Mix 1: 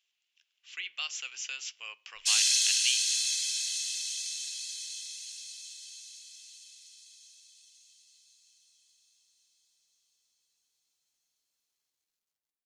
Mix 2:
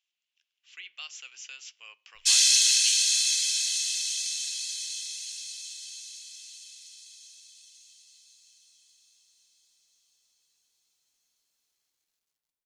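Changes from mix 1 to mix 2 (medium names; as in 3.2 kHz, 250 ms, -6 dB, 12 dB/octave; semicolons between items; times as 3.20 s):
speech -5.5 dB; background +5.0 dB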